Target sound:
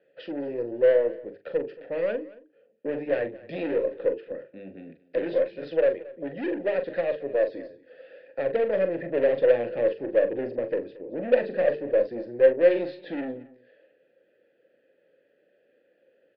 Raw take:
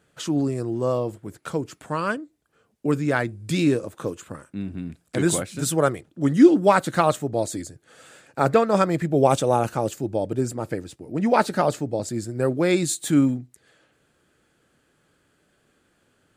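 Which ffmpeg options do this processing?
ffmpeg -i in.wav -filter_complex "[0:a]equalizer=frequency=340:width=0.36:gain=9.5,bandreject=frequency=50:width_type=h:width=6,bandreject=frequency=100:width_type=h:width=6,bandreject=frequency=150:width_type=h:width=6,bandreject=frequency=200:width_type=h:width=6,bandreject=frequency=250:width_type=h:width=6,bandreject=frequency=300:width_type=h:width=6,bandreject=frequency=350:width_type=h:width=6,bandreject=frequency=400:width_type=h:width=6,bandreject=frequency=450:width_type=h:width=6,acrossover=split=390[link_01][link_02];[link_01]dynaudnorm=framelen=810:gausssize=5:maxgain=11.5dB[link_03];[link_02]alimiter=limit=-6.5dB:level=0:latency=1:release=341[link_04];[link_03][link_04]amix=inputs=2:normalize=0,acontrast=88,asoftclip=type=tanh:threshold=-7dB,asplit=3[link_05][link_06][link_07];[link_05]bandpass=frequency=530:width_type=q:width=8,volume=0dB[link_08];[link_06]bandpass=frequency=1840:width_type=q:width=8,volume=-6dB[link_09];[link_07]bandpass=frequency=2480:width_type=q:width=8,volume=-9dB[link_10];[link_08][link_09][link_10]amix=inputs=3:normalize=0,aeval=exprs='0.473*(cos(1*acos(clip(val(0)/0.473,-1,1)))-cos(1*PI/2))+0.0531*(cos(3*acos(clip(val(0)/0.473,-1,1)))-cos(3*PI/2))+0.00376*(cos(8*acos(clip(val(0)/0.473,-1,1)))-cos(8*PI/2))':channel_layout=same,asplit=2[link_11][link_12];[link_12]adelay=42,volume=-9.5dB[link_13];[link_11][link_13]amix=inputs=2:normalize=0,asplit=2[link_14][link_15];[link_15]aecho=0:1:226:0.0944[link_16];[link_14][link_16]amix=inputs=2:normalize=0,aresample=11025,aresample=44100" out.wav

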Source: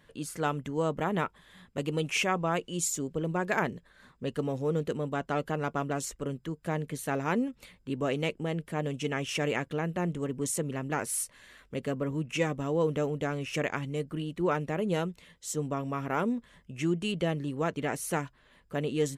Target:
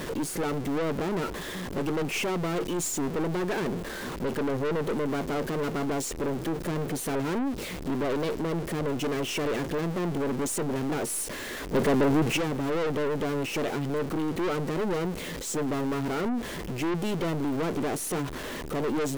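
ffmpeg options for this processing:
ffmpeg -i in.wav -filter_complex "[0:a]aeval=exprs='val(0)+0.5*0.0251*sgn(val(0))':channel_layout=same,equalizer=frequency=360:width_type=o:width=1.6:gain=12.5,aeval=exprs='(tanh(20*val(0)+0.35)-tanh(0.35))/20':channel_layout=same,asettb=1/sr,asplit=3[link_01][link_02][link_03];[link_01]atrim=end=11.744[link_04];[link_02]atrim=start=11.74:end=12.37,asetpts=PTS-STARTPTS,afade=type=in:duration=0.004:curve=qsin,afade=type=out:start_time=0.626:duration=0.004:curve=qsin,acontrast=50[link_05];[link_03]atrim=start=12.366[link_06];[link_04][link_05]acrossfade=duration=0.004:curve1=hsin:curve2=qsin[link_07];[link_07][link_06]acrossfade=duration=0.004:curve1=qsin:curve2=hsin" out.wav

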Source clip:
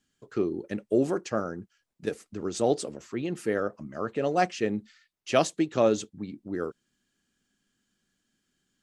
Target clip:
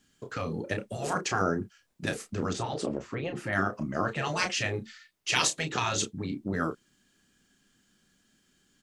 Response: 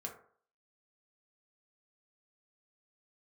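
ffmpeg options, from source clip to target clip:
-filter_complex "[0:a]asettb=1/sr,asplit=3[link_01][link_02][link_03];[link_01]atrim=end=2.534[link_04];[link_02]atrim=start=2.53:end=3.53,asetpts=PTS-STARTPTS,afade=type=in:duration=0.004:curve=qsin,afade=type=out:start_time=0.996:duration=0.004:curve=qsin,lowpass=frequency=1400:poles=1[link_05];[link_03]atrim=start=3.526[link_06];[link_04][link_05]acrossfade=duration=0.004:curve1=hsin:curve2=qsin[link_07];[link_07][link_06]acrossfade=duration=0.004:curve1=qsin:curve2=hsin,afftfilt=real='re*lt(hypot(re,im),0.126)':imag='im*lt(hypot(re,im),0.126)':win_size=1024:overlap=0.75,asplit=2[link_08][link_09];[link_09]adelay=31,volume=-8dB[link_10];[link_08][link_10]amix=inputs=2:normalize=0,volume=8dB"

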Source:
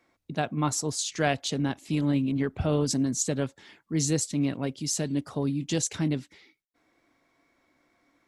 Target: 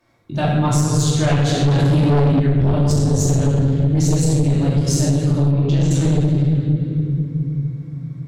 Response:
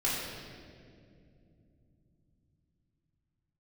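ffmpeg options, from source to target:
-filter_complex "[0:a]equalizer=frequency=125:width_type=o:width=1:gain=12,equalizer=frequency=250:width_type=o:width=1:gain=-5,equalizer=frequency=2000:width_type=o:width=1:gain=-5[link_01];[1:a]atrim=start_sample=2205,asetrate=34839,aresample=44100[link_02];[link_01][link_02]afir=irnorm=-1:irlink=0,aeval=exprs='1.19*(cos(1*acos(clip(val(0)/1.19,-1,1)))-cos(1*PI/2))+0.335*(cos(4*acos(clip(val(0)/1.19,-1,1)))-cos(4*PI/2))+0.422*(cos(5*acos(clip(val(0)/1.19,-1,1)))-cos(5*PI/2))':channel_layout=same,asettb=1/sr,asplit=3[link_03][link_04][link_05];[link_03]atrim=end=1.684[link_06];[link_04]atrim=start=1.68:end=2.4,asetpts=PTS-STARTPTS,afade=type=in:duration=0.004:curve=qsin,afade=type=out:start_time=0.716:duration=0.004:curve=qsin,acontrast=72[link_07];[link_05]atrim=start=2.396[link_08];[link_06][link_07]acrossfade=duration=0.004:curve1=hsin:curve2=qsin[link_09];[link_09][link_08]acrossfade=duration=0.004:curve1=qsin:curve2=hsin,asettb=1/sr,asplit=3[link_10][link_11][link_12];[link_10]atrim=end=5.514[link_13];[link_11]atrim=start=5.51:end=5.91,asetpts=PTS-STARTPTS,afade=type=in:duration=0.004:curve=qsin,afade=type=out:start_time=0.396:duration=0.004:curve=qsin,lowpass=3700[link_14];[link_12]atrim=start=5.906[link_15];[link_13][link_14]acrossfade=duration=0.004:curve1=hsin:curve2=qsin[link_16];[link_16][link_15]acrossfade=duration=0.004:curve1=qsin:curve2=hsin,acompressor=threshold=-5dB:ratio=6,volume=-7dB"

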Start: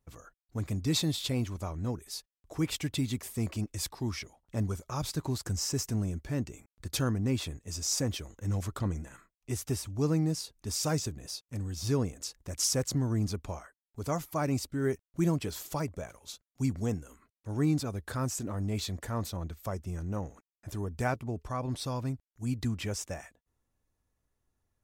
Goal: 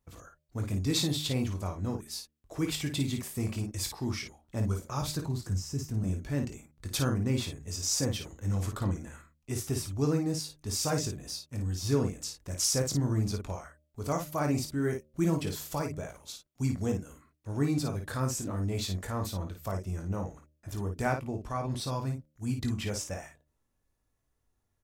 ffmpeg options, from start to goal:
ffmpeg -i in.wav -filter_complex "[0:a]bandreject=frequency=75.62:width_type=h:width=4,bandreject=frequency=151.24:width_type=h:width=4,bandreject=frequency=226.86:width_type=h:width=4,bandreject=frequency=302.48:width_type=h:width=4,bandreject=frequency=378.1:width_type=h:width=4,bandreject=frequency=453.72:width_type=h:width=4,bandreject=frequency=529.34:width_type=h:width=4,bandreject=frequency=604.96:width_type=h:width=4,asettb=1/sr,asplit=3[link_01][link_02][link_03];[link_01]atrim=end=5.244[link_04];[link_02]atrim=start=5.24:end=6.04,asetpts=PTS-STARTPTS,afade=type=in:duration=0.004:curve=qsin,afade=type=out:start_time=0.796:duration=0.004:curve=qsin,acrossover=split=270[link_05][link_06];[link_06]acompressor=threshold=-51dB:ratio=2[link_07];[link_05][link_07]amix=inputs=2:normalize=0[link_08];[link_03]atrim=start=6.036[link_09];[link_04][link_08]acrossfade=duration=0.004:curve1=hsin:curve2=qsin[link_10];[link_10][link_09]acrossfade=duration=0.004:curve1=qsin:curve2=hsin,aecho=1:1:21|54:0.398|0.473" out.wav

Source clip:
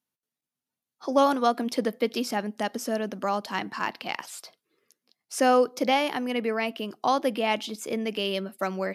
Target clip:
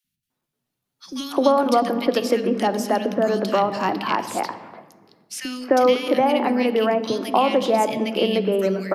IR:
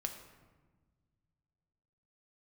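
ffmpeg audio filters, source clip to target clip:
-filter_complex "[0:a]asplit=2[link_01][link_02];[1:a]atrim=start_sample=2205,lowpass=4500,lowshelf=frequency=380:gain=9[link_03];[link_02][link_03]afir=irnorm=-1:irlink=0,volume=-1dB[link_04];[link_01][link_04]amix=inputs=2:normalize=0,acrossover=split=220|1100|3200[link_05][link_06][link_07][link_08];[link_05]acompressor=threshold=-41dB:ratio=4[link_09];[link_06]acompressor=threshold=-22dB:ratio=4[link_10];[link_07]acompressor=threshold=-37dB:ratio=4[link_11];[link_08]acompressor=threshold=-38dB:ratio=4[link_12];[link_09][link_10][link_11][link_12]amix=inputs=4:normalize=0,acrossover=split=220|2000[link_13][link_14][link_15];[link_13]adelay=40[link_16];[link_14]adelay=300[link_17];[link_16][link_17][link_15]amix=inputs=3:normalize=0,volume=6.5dB"

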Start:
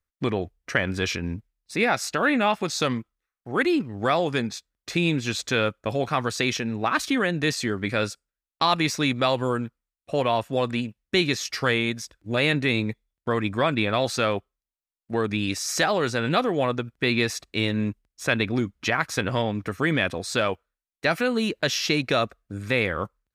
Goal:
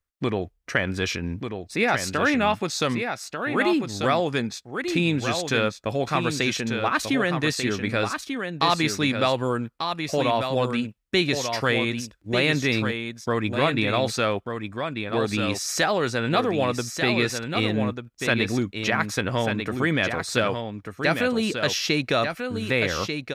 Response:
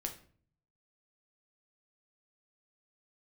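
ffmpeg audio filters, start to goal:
-af "aecho=1:1:1191:0.473"

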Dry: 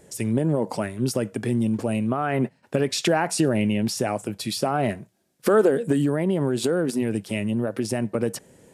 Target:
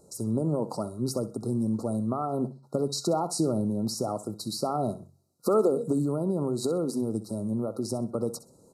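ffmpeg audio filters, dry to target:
ffmpeg -i in.wav -af "bandreject=frequency=45.64:width_type=h:width=4,bandreject=frequency=91.28:width_type=h:width=4,bandreject=frequency=136.92:width_type=h:width=4,afftfilt=real='re*(1-between(b*sr/4096,1400,3800))':imag='im*(1-between(b*sr/4096,1400,3800))':win_size=4096:overlap=0.75,aecho=1:1:64|128|192:0.168|0.0436|0.0113,volume=-5dB" out.wav

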